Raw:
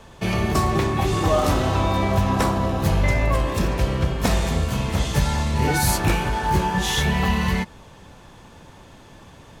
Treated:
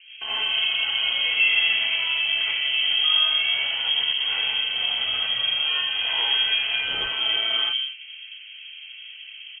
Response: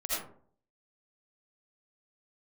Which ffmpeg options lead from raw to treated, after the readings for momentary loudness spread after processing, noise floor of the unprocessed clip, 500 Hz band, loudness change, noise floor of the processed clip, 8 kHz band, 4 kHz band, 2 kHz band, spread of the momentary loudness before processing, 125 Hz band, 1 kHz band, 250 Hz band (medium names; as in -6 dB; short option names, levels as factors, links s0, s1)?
20 LU, -46 dBFS, -19.5 dB, +1.0 dB, -42 dBFS, under -40 dB, +13.5 dB, +4.5 dB, 4 LU, under -35 dB, -14.5 dB, under -25 dB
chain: -filter_complex "[0:a]highpass=f=50:w=0.5412,highpass=f=50:w=1.3066,asplit=2[s0][s1];[s1]acompressor=threshold=0.02:ratio=6,volume=0.944[s2];[s0][s2]amix=inputs=2:normalize=0,alimiter=limit=0.158:level=0:latency=1:release=92,acrossover=split=1200[s3][s4];[s3]aecho=1:1:125.4|207:0.794|0.631[s5];[s4]acrusher=bits=5:mix=0:aa=0.000001[s6];[s5][s6]amix=inputs=2:normalize=0[s7];[1:a]atrim=start_sample=2205,atrim=end_sample=4410[s8];[s7][s8]afir=irnorm=-1:irlink=0,lowpass=f=2800:t=q:w=0.5098,lowpass=f=2800:t=q:w=0.6013,lowpass=f=2800:t=q:w=0.9,lowpass=f=2800:t=q:w=2.563,afreqshift=-3300,volume=0.631"